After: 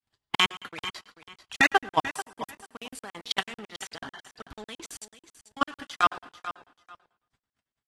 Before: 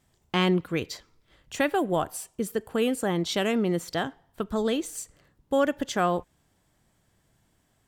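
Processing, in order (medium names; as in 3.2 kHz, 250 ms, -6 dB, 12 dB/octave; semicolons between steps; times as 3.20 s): gate with hold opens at -58 dBFS; high-order bell 2.1 kHz +9 dB 2.9 oct; harmonic-percussive split harmonic -4 dB; dynamic bell 570 Hz, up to -7 dB, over -41 dBFS, Q 3.4; level held to a coarse grid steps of 22 dB; waveshaping leveller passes 2; comb of notches 180 Hz; feedback delay 440 ms, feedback 20%, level -13.5 dB; plate-style reverb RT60 0.7 s, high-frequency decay 0.9×, pre-delay 85 ms, DRR 18 dB; crackling interface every 0.11 s, samples 2048, zero, from 0.35 s; AAC 32 kbps 32 kHz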